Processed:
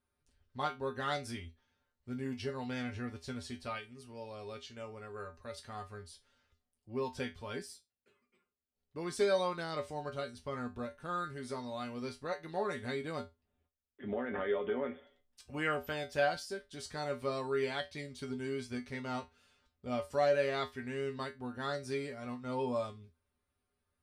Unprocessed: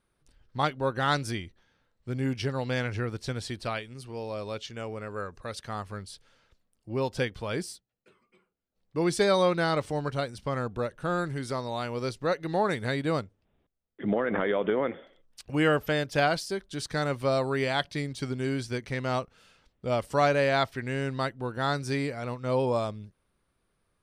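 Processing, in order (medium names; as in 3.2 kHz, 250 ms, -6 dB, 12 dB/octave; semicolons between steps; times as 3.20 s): feedback comb 82 Hz, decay 0.2 s, harmonics odd, mix 90%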